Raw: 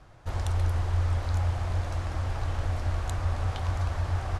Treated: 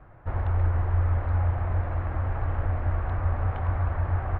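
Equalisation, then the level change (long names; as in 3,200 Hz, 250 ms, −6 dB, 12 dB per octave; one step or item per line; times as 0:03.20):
low-pass filter 2,000 Hz 24 dB per octave
+2.5 dB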